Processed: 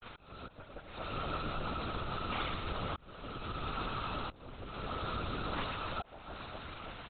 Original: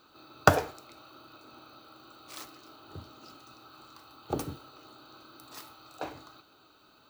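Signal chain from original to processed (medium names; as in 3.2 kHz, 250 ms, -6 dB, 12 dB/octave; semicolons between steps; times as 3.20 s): delay that grows with frequency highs late, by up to 102 ms; compression 10:1, threshold -47 dBFS, peak gain reduction 32 dB; flange 1.2 Hz, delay 2 ms, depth 9.4 ms, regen -41%; bit crusher 10-bit; on a send: reverse bouncing-ball echo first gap 120 ms, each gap 1.4×, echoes 5; on the sum: slow attack 714 ms; LPC vocoder at 8 kHz whisper; trim +18 dB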